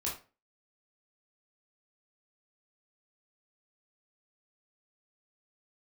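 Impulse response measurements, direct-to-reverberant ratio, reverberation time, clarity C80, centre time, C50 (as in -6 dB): -5.0 dB, 0.35 s, 13.0 dB, 31 ms, 6.5 dB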